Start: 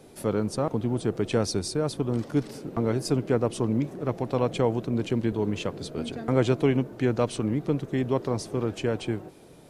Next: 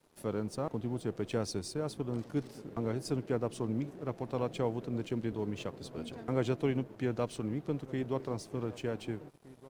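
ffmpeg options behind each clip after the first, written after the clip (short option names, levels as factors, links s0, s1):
-filter_complex "[0:a]asplit=2[s0][s1];[s1]adelay=1516,volume=0.141,highshelf=f=4000:g=-34.1[s2];[s0][s2]amix=inputs=2:normalize=0,aeval=exprs='sgn(val(0))*max(abs(val(0))-0.00316,0)':c=same,volume=0.376"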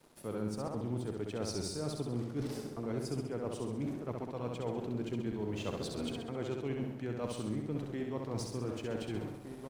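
-af "areverse,acompressor=threshold=0.00891:ratio=10,areverse,aecho=1:1:66|132|198|264|330|396|462:0.631|0.347|0.191|0.105|0.0577|0.0318|0.0175,volume=2.11"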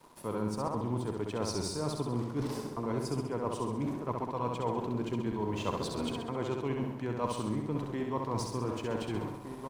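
-af "equalizer=f=1000:t=o:w=0.3:g=14,volume=1.41"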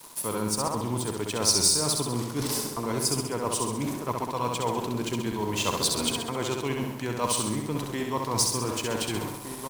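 -af "crystalizer=i=6.5:c=0,volume=1.41"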